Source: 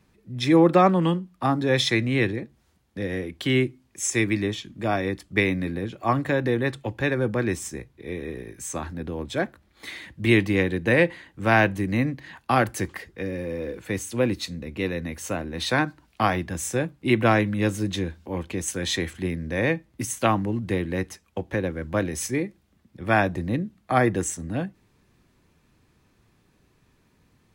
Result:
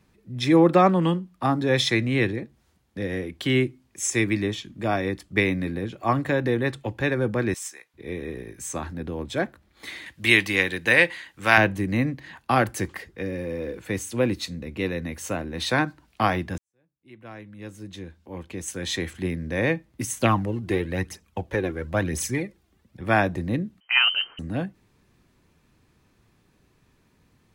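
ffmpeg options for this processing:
-filter_complex "[0:a]asettb=1/sr,asplit=3[s0][s1][s2];[s0]atrim=end=7.544[s3];[s1]atrim=start=7.54:end=7.94,asetpts=PTS-STARTPTS,afade=t=in:d=0.004:c=qsin,afade=t=out:st=0.396:d=0.004:c=qsin,highpass=1100[s4];[s2]atrim=start=7.936[s5];[s3][s4]acrossfade=d=0.004:c1=hsin:c2=qsin[s6];[s6][s5]acrossfade=d=0.004:c1=qsin:c2=hsin,asettb=1/sr,asplit=3[s7][s8][s9];[s7]atrim=end=10.064[s10];[s8]atrim=start=10.06:end=11.58,asetpts=PTS-STARTPTS,afade=t=in:d=0.004:c=qsin,afade=t=out:st=1.516:d=0.004:c=qsin,tiltshelf=f=810:g=-8.5[s11];[s9]atrim=start=11.576[s12];[s10][s11]acrossfade=d=0.004:c1=hsin:c2=qsin[s13];[s13][s12]acrossfade=d=0.004:c1=qsin:c2=hsin,asettb=1/sr,asplit=3[s14][s15][s16];[s14]atrim=end=20.194[s17];[s15]atrim=start=20.19:end=23.02,asetpts=PTS-STARTPTS,afade=t=in:d=0.004:c=qsin,afade=t=out:st=2.826:d=0.004:c=qsin,aphaser=in_gain=1:out_gain=1:delay=3:decay=0.5:speed=1:type=triangular[s18];[s16]atrim=start=23.016[s19];[s17][s18]acrossfade=d=0.004:c1=hsin:c2=qsin[s20];[s20][s19]acrossfade=d=0.004:c1=qsin:c2=hsin,asettb=1/sr,asplit=3[s21][s22][s23];[s21]atrim=end=23.804[s24];[s22]atrim=start=23.8:end=24.39,asetpts=PTS-STARTPTS,afade=t=in:d=0.004:c=qsin,afade=t=out:st=0.586:d=0.004:c=qsin,lowpass=f=2700:t=q:w=0.5098,lowpass=f=2700:t=q:w=0.6013,lowpass=f=2700:t=q:w=0.9,lowpass=f=2700:t=q:w=2.563,afreqshift=-3200[s25];[s23]atrim=start=24.386[s26];[s24][s25]acrossfade=d=0.004:c1=hsin:c2=qsin[s27];[s27][s26]acrossfade=d=0.004:c1=qsin:c2=hsin,asplit=2[s28][s29];[s28]atrim=end=16.58,asetpts=PTS-STARTPTS,afade=t=out:st=16.576:d=0.004:c=hsin[s30];[s29]atrim=start=16.58,asetpts=PTS-STARTPTS,afade=t=in:d=2.66:c=qua[s31];[s30][s31]concat=n=2:v=0:a=1"

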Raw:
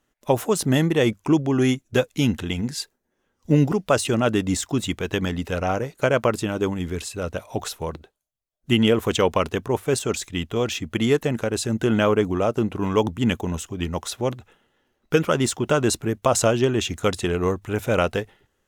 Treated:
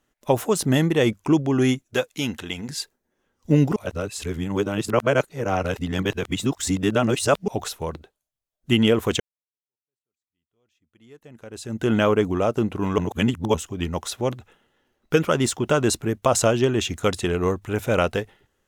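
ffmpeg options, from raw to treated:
-filter_complex "[0:a]asettb=1/sr,asplit=3[s0][s1][s2];[s0]atrim=end=1.844[s3];[s1]atrim=start=1.84:end=2.69,asetpts=PTS-STARTPTS,afade=t=in:d=0.004:c=qsin,afade=t=out:st=0.846:d=0.004:c=qsin,lowshelf=f=290:g=-11.5[s4];[s2]atrim=start=2.686[s5];[s3][s4]acrossfade=d=0.004:c1=hsin:c2=qsin[s6];[s6][s5]acrossfade=d=0.004:c1=qsin:c2=hsin,asplit=6[s7][s8][s9][s10][s11][s12];[s7]atrim=end=3.762[s13];[s8]atrim=start=3.758:end=7.482,asetpts=PTS-STARTPTS,areverse[s14];[s9]atrim=start=7.478:end=9.2,asetpts=PTS-STARTPTS,afade=t=out:st=1.718:d=0.004:c=hsin[s15];[s10]atrim=start=9.2:end=12.982,asetpts=PTS-STARTPTS,afade=t=in:d=2.69:c=exp[s16];[s11]atrim=start=12.978:end=13.542,asetpts=PTS-STARTPTS,areverse[s17];[s12]atrim=start=13.538[s18];[s13][s14]acrossfade=d=0.004:c1=hsin:c2=hsin[s19];[s15][s16]concat=n=2:v=0:a=1[s20];[s19][s20]acrossfade=d=0.004:c1=hsin:c2=hsin[s21];[s21][s17]acrossfade=d=0.004:c1=hsin:c2=hsin[s22];[s22][s18]acrossfade=d=0.004:c1=hsin:c2=hsin"

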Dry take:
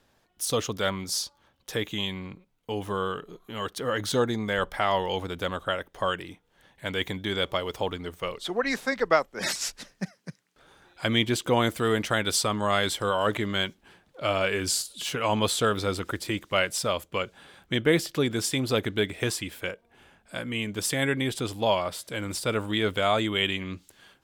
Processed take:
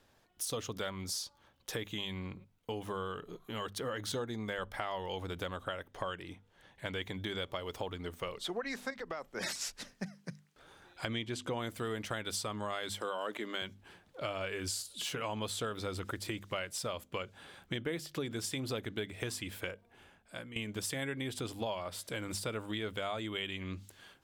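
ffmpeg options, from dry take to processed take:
-filter_complex "[0:a]asettb=1/sr,asplit=3[s0][s1][s2];[s0]atrim=end=5.914[s3];[s1]atrim=start=5.91:end=7.17,asetpts=PTS-STARTPTS,afade=t=in:d=0.004:c=qsin,afade=t=out:st=1.256:d=0.004:c=qsin,highshelf=f=11000:g=-8.5[s4];[s2]atrim=start=7.166[s5];[s3][s4]acrossfade=d=0.004:c1=hsin:c2=qsin[s6];[s6][s5]acrossfade=d=0.004:c1=qsin:c2=hsin,asettb=1/sr,asplit=3[s7][s8][s9];[s7]atrim=end=8.904[s10];[s8]atrim=start=8.9:end=9.32,asetpts=PTS-STARTPTS,afade=t=in:d=0.004:c=qsin,afade=t=out:st=0.416:d=0.004:c=qsin,acompressor=threshold=0.0282:ratio=6:attack=3.2:release=140:knee=1:detection=peak[s11];[s9]atrim=start=9.316[s12];[s10][s11]acrossfade=d=0.004:c1=hsin:c2=qsin[s13];[s13][s12]acrossfade=d=0.004:c1=qsin:c2=hsin,asettb=1/sr,asplit=3[s14][s15][s16];[s14]atrim=end=11.054[s17];[s15]atrim=start=11.05:end=11.58,asetpts=PTS-STARTPTS,afade=t=in:d=0.004:c=qsin,afade=t=out:st=0.526:d=0.004:c=qsin,lowpass=9400[s18];[s16]atrim=start=11.576[s19];[s17][s18]acrossfade=d=0.004:c1=hsin:c2=qsin[s20];[s20][s19]acrossfade=d=0.004:c1=qsin:c2=hsin,asettb=1/sr,asplit=3[s21][s22][s23];[s21]atrim=end=12.944[s24];[s22]atrim=start=12.94:end=13.62,asetpts=PTS-STARTPTS,afade=t=in:d=0.004:c=qsin,afade=t=out:st=0.676:d=0.004:c=qsin,highpass=f=220:w=0.5412,highpass=f=220:w=1.3066[s25];[s23]atrim=start=13.616[s26];[s24][s25]acrossfade=d=0.004:c1=hsin:c2=qsin[s27];[s27][s26]acrossfade=d=0.004:c1=qsin:c2=hsin,asplit=2[s28][s29];[s28]atrim=end=20.56,asetpts=PTS-STARTPTS,afade=t=out:st=19.63:d=0.93:c=qsin:silence=0.149624[s30];[s29]atrim=start=20.56,asetpts=PTS-STARTPTS,afade=t=in:d=0.004:c=hsin:silence=0.149624[s31];[s30][s31]concat=n=2:v=0:a=1,equalizer=f=97:w=4.8:g=4.5,bandreject=f=50:t=h:w=6,bandreject=f=100:t=h:w=6,bandreject=f=150:t=h:w=6,bandreject=f=200:t=h:w=6,bandreject=f=250:t=h:w=6,acompressor=threshold=0.02:ratio=4,volume=0.794"

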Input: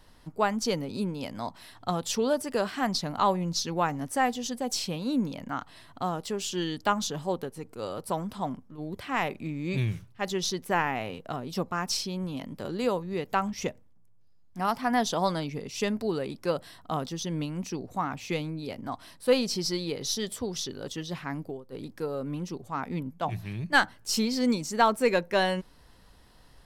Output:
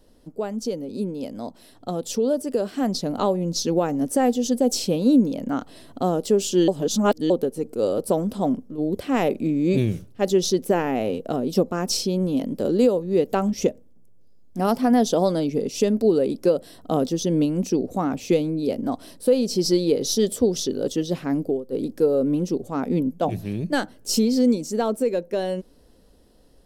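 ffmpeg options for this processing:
-filter_complex "[0:a]asplit=3[s0][s1][s2];[s0]atrim=end=6.682[s3];[s1]atrim=start=6.678:end=7.302,asetpts=PTS-STARTPTS,areverse[s4];[s2]atrim=start=7.298[s5];[s3][s4]acrossfade=d=0.004:c1=hsin:c2=hsin[s6];[s6][s5]acrossfade=d=0.004:c1=hsin:c2=hsin,equalizer=f=125:t=o:w=1:g=-6,equalizer=f=250:t=o:w=1:g=6,equalizer=f=500:t=o:w=1:g=8,equalizer=f=1000:t=o:w=1:g=-9,equalizer=f=2000:t=o:w=1:g=-8,equalizer=f=4000:t=o:w=1:g=-3,alimiter=limit=0.141:level=0:latency=1:release=361,dynaudnorm=f=500:g=11:m=2.51"

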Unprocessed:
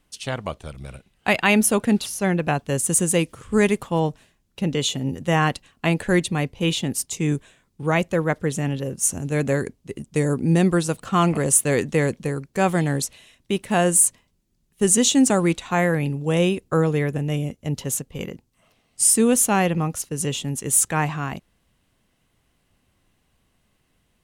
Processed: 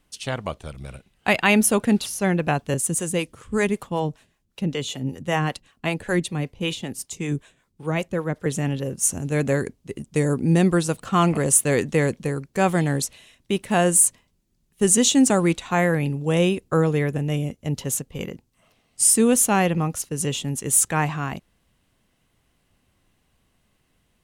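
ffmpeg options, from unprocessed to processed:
-filter_complex "[0:a]asettb=1/sr,asplit=3[s0][s1][s2];[s0]atrim=end=2.744[s3];[s1]atrim=start=2.74:end=8.46,asetpts=PTS-STARTPTS,afade=t=in:d=0.004:c=qsin,afade=t=out:st=5.716:d=0.004:c=qsin,acrossover=split=410[s4][s5];[s4]aeval=exprs='val(0)*(1-0.7/2+0.7/2*cos(2*PI*5.2*n/s))':c=same[s6];[s5]aeval=exprs='val(0)*(1-0.7/2-0.7/2*cos(2*PI*5.2*n/s))':c=same[s7];[s6][s7]amix=inputs=2:normalize=0[s8];[s2]atrim=start=8.456[s9];[s3][s8]acrossfade=d=0.004:c1=hsin:c2=qsin[s10];[s10][s9]acrossfade=d=0.004:c1=qsin:c2=hsin"

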